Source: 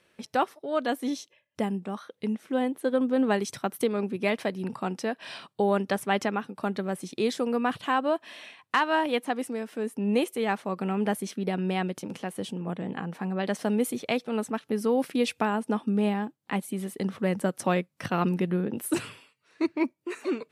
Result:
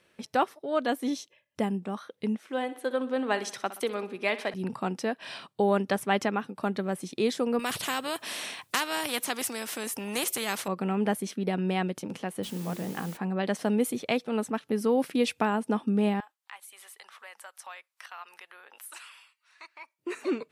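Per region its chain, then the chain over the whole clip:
2.39–4.54 s: frequency weighting A + feedback delay 62 ms, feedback 51%, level -15 dB
7.59–10.68 s: treble shelf 4.9 kHz +11.5 dB + spectrum-flattening compressor 2:1
12.43–13.17 s: hum notches 50/100/150/200/250/300/350/400/450 Hz + word length cut 8-bit, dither triangular
16.20–19.99 s: high-pass 880 Hz 24 dB/octave + compression 2:1, threshold -48 dBFS
whole clip: none

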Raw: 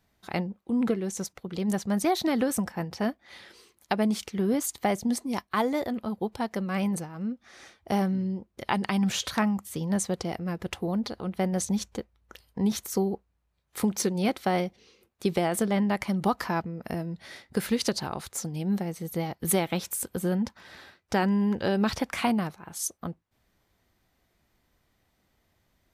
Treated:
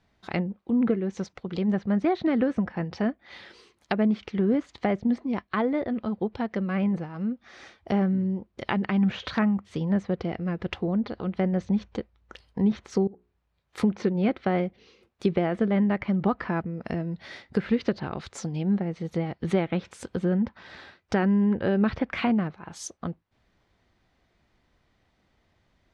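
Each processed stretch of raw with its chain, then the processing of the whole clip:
13.07–13.78 s: compression 20:1, threshold -44 dBFS + hum notches 60/120/180/240/300/360/420 Hz
whole clip: low-pass 4.6 kHz 12 dB/octave; low-pass that closes with the level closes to 2 kHz, closed at -25.5 dBFS; dynamic bell 890 Hz, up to -7 dB, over -43 dBFS, Q 1.6; trim +3 dB

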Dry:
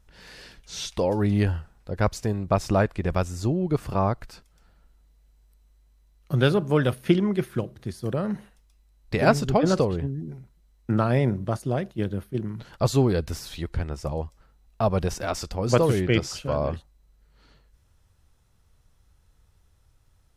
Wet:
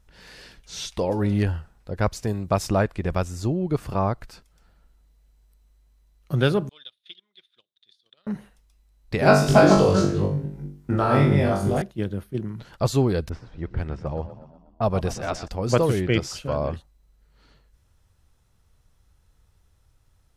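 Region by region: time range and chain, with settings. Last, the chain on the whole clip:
0.93–1.43 s: de-hum 133.4 Hz, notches 30 + hard clipper -13 dBFS
2.27–2.67 s: high-pass 42 Hz + treble shelf 5 kHz +8.5 dB
6.69–8.27 s: band-pass filter 3.6 kHz, Q 14 + transient shaper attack +5 dB, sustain -9 dB
9.23–11.82 s: chunks repeated in reverse 205 ms, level -2 dB + flutter echo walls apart 3.5 m, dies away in 0.48 s
13.29–15.48 s: level-controlled noise filter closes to 420 Hz, open at -21 dBFS + frequency-shifting echo 121 ms, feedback 53%, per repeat +31 Hz, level -13.5 dB
whole clip: none

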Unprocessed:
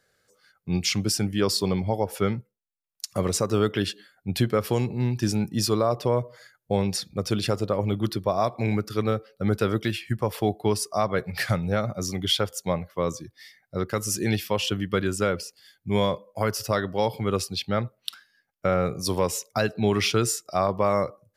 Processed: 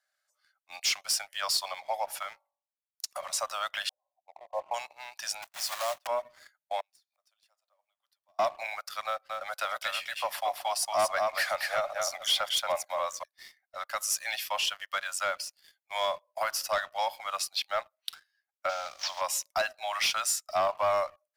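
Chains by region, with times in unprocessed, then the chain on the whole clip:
2.22–3.39 s: compression 4:1, threshold -24 dBFS + de-hum 47.46 Hz, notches 24
3.89–4.74 s: brick-wall FIR low-pass 1.1 kHz + peaking EQ 720 Hz +5 dB 1.5 oct
5.42–6.09 s: block-companded coder 3-bit + gate -35 dBFS, range -17 dB + ladder high-pass 170 Hz, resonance 25%
6.80–8.39 s: companding laws mixed up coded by mu + treble shelf 4.3 kHz +6.5 dB + inverted gate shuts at -28 dBFS, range -32 dB
9.06–13.23 s: bass shelf 290 Hz +11.5 dB + delay 230 ms -4.5 dB
18.69–19.21 s: CVSD coder 32 kbps + treble shelf 2.8 kHz +10 dB + compression 2.5:1, threshold -27 dBFS
whole clip: steep high-pass 590 Hz 96 dB/octave; waveshaping leveller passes 2; trim -7.5 dB

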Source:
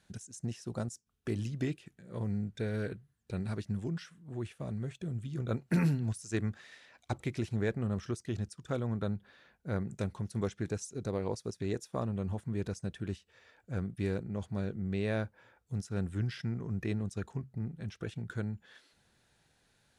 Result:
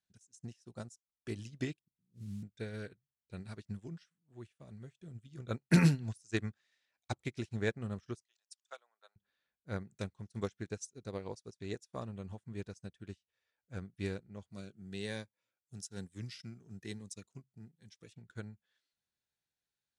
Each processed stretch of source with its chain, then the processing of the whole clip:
1.79–2.43 s: inverse Chebyshev low-pass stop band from 1.6 kHz, stop band 80 dB + modulation noise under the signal 30 dB
8.24–9.16 s: high-pass 690 Hz 24 dB/octave + three bands expanded up and down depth 100%
14.50–18.13 s: high-pass 110 Hz + treble shelf 4.6 kHz +11 dB + Shepard-style phaser rising 1.1 Hz
whole clip: low-pass 8.9 kHz 12 dB/octave; treble shelf 2.2 kHz +9.5 dB; upward expansion 2.5:1, over -46 dBFS; trim +5 dB

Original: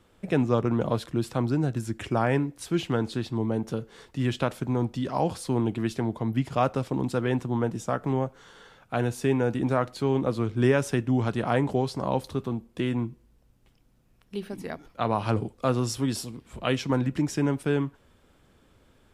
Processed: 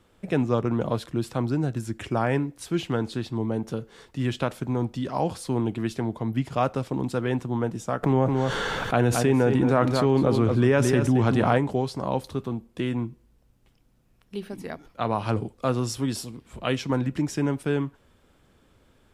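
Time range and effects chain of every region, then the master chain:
8.03–11.58 s: treble shelf 4.3 kHz -5 dB + delay 221 ms -10.5 dB + level flattener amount 70%
whole clip: none

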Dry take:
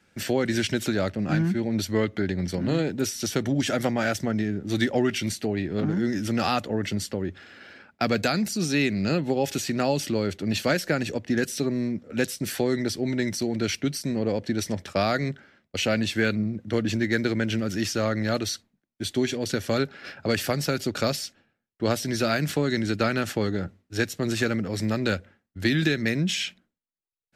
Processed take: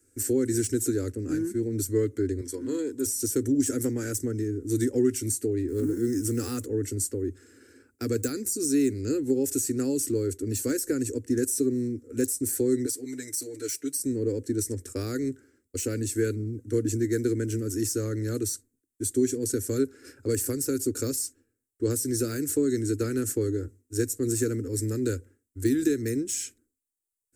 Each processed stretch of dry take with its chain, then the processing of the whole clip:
2.41–3.06 s: high-pass 420 Hz 6 dB/octave + treble shelf 8.8 kHz -3.5 dB + small resonant body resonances 1/3.3 kHz, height 15 dB, ringing for 40 ms
5.68–6.66 s: companding laws mixed up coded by mu + band-stop 610 Hz, Q 13
12.86–13.99 s: high-pass 1.1 kHz 6 dB/octave + comb 6.8 ms, depth 95%
whole clip: de-esser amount 60%; FFT filter 120 Hz 0 dB, 180 Hz -28 dB, 260 Hz +3 dB, 460 Hz +1 dB, 660 Hz -26 dB, 1.5 kHz -12 dB, 3.3 kHz -21 dB, 4.9 kHz -8 dB, 8 kHz +13 dB, 14 kHz +8 dB

